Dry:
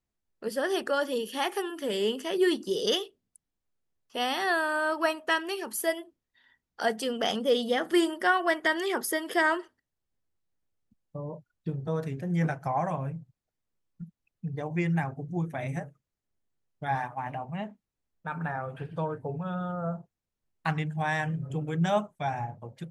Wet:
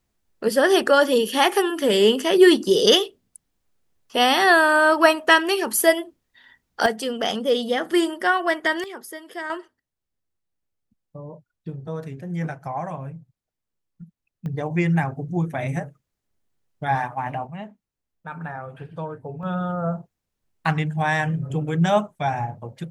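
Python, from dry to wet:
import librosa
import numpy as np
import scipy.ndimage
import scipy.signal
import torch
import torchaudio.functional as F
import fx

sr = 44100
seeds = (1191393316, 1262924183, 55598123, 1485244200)

y = fx.gain(x, sr, db=fx.steps((0.0, 11.5), (6.86, 4.0), (8.84, -7.5), (9.5, -0.5), (14.46, 7.0), (17.47, 0.0), (19.43, 7.0)))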